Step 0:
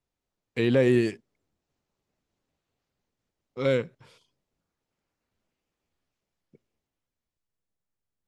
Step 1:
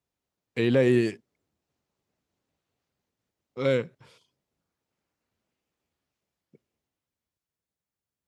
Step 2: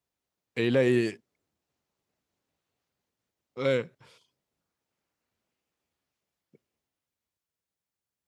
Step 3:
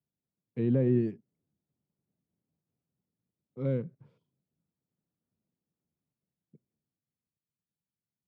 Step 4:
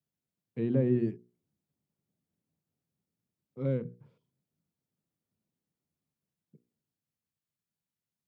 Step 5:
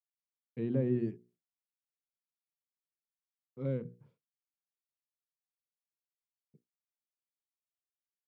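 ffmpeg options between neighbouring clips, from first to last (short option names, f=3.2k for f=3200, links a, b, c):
-af "highpass=59"
-af "lowshelf=f=430:g=-4"
-af "bandpass=f=160:t=q:w=1.8:csg=0,volume=6.5dB"
-af "bandreject=f=60:t=h:w=6,bandreject=f=120:t=h:w=6,bandreject=f=180:t=h:w=6,bandreject=f=240:t=h:w=6,bandreject=f=300:t=h:w=6,bandreject=f=360:t=h:w=6,bandreject=f=420:t=h:w=6,bandreject=f=480:t=h:w=6"
-af "agate=range=-33dB:threshold=-57dB:ratio=3:detection=peak,volume=-4dB"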